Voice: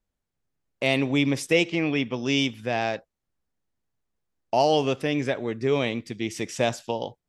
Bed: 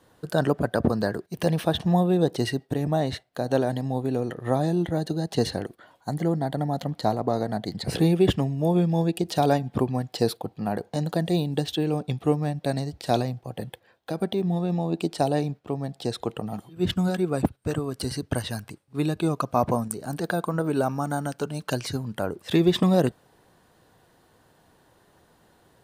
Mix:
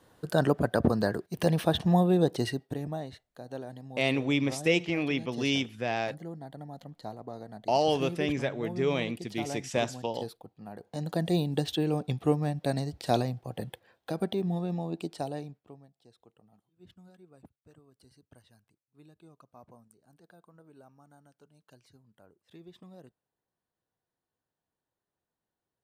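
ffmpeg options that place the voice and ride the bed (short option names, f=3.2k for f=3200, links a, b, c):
-filter_complex "[0:a]adelay=3150,volume=-4.5dB[a];[1:a]volume=11.5dB,afade=t=out:st=2.16:d=0.97:silence=0.188365,afade=t=in:st=10.76:d=0.52:silence=0.211349,afade=t=out:st=14.07:d=1.84:silence=0.0398107[b];[a][b]amix=inputs=2:normalize=0"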